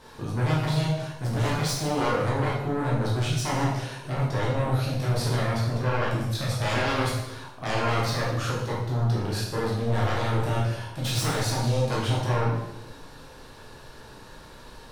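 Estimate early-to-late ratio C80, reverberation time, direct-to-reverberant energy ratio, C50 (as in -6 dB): 4.5 dB, 0.85 s, -6.0 dB, 1.5 dB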